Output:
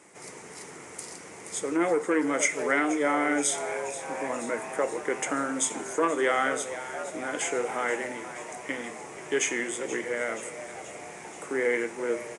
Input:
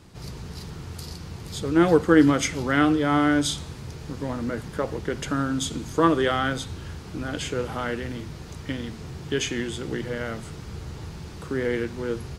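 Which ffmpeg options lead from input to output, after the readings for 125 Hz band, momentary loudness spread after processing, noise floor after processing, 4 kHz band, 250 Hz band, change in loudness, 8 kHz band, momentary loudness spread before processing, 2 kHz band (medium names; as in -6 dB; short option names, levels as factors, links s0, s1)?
-21.0 dB, 16 LU, -45 dBFS, -7.0 dB, -8.0 dB, -4.0 dB, +4.5 dB, 17 LU, +0.5 dB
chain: -filter_complex "[0:a]tiltshelf=f=720:g=9,asplit=2[s0][s1];[s1]highpass=f=720:p=1,volume=5.01,asoftclip=type=tanh:threshold=0.944[s2];[s0][s2]amix=inputs=2:normalize=0,lowpass=f=2400:p=1,volume=0.501,equalizer=f=2100:t=o:w=0.44:g=13,asplit=8[s3][s4][s5][s6][s7][s8][s9][s10];[s4]adelay=478,afreqshift=120,volume=0.178[s11];[s5]adelay=956,afreqshift=240,volume=0.112[s12];[s6]adelay=1434,afreqshift=360,volume=0.0708[s13];[s7]adelay=1912,afreqshift=480,volume=0.0447[s14];[s8]adelay=2390,afreqshift=600,volume=0.0279[s15];[s9]adelay=2868,afreqshift=720,volume=0.0176[s16];[s10]adelay=3346,afreqshift=840,volume=0.0111[s17];[s3][s11][s12][s13][s14][s15][s16][s17]amix=inputs=8:normalize=0,alimiter=limit=0.422:level=0:latency=1:release=305,aexciter=amount=14.1:drive=6.2:freq=6500,aresample=22050,aresample=44100,highpass=450,flanger=delay=9.6:depth=5.7:regen=-78:speed=0.68:shape=sinusoidal"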